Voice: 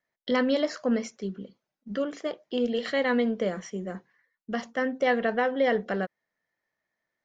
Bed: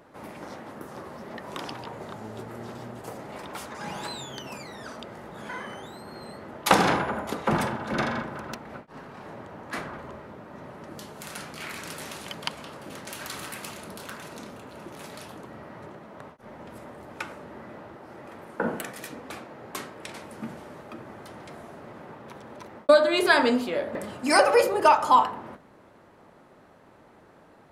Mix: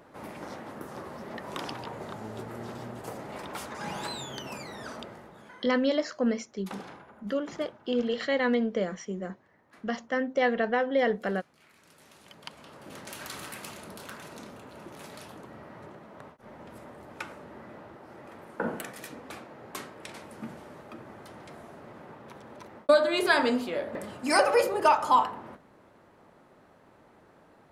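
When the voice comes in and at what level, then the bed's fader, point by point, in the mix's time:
5.35 s, -1.0 dB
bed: 5.00 s -0.5 dB
5.90 s -23.5 dB
11.73 s -23.5 dB
12.98 s -3.5 dB

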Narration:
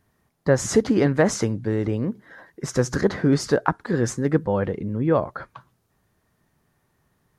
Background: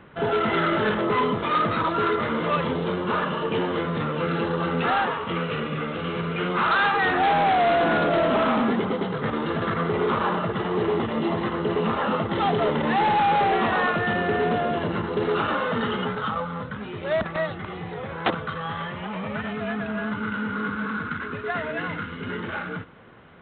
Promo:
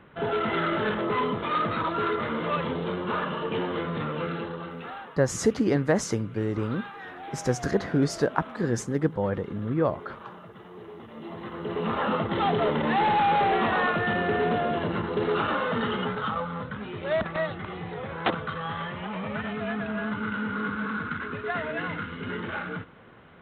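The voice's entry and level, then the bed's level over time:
4.70 s, -4.5 dB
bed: 4.18 s -4 dB
5.14 s -20 dB
10.97 s -20 dB
12.00 s -2 dB

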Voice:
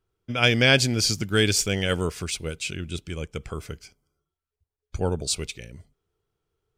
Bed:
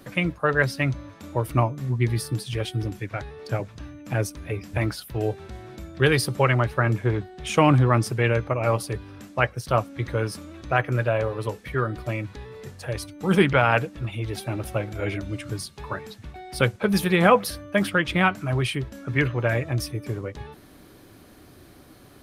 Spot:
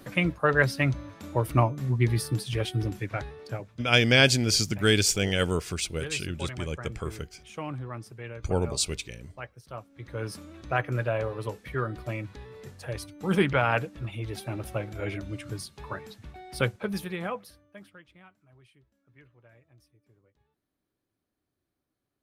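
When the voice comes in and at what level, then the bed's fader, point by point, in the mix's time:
3.50 s, -1.0 dB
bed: 3.24 s -1 dB
4.01 s -18.5 dB
9.89 s -18.5 dB
10.31 s -5 dB
16.65 s -5 dB
18.24 s -34.5 dB

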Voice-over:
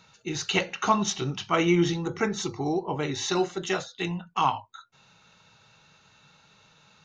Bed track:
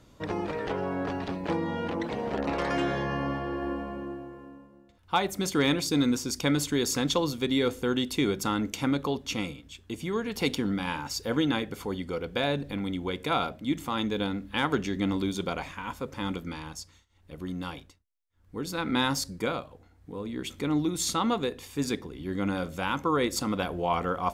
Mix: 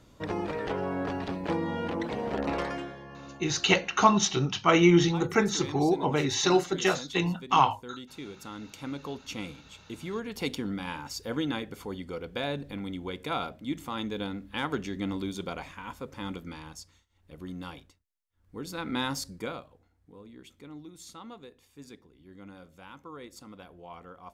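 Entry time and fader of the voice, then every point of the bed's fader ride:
3.15 s, +2.5 dB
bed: 2.58 s -0.5 dB
2.97 s -15.5 dB
8.31 s -15.5 dB
9.51 s -4.5 dB
19.30 s -4.5 dB
20.76 s -18.5 dB

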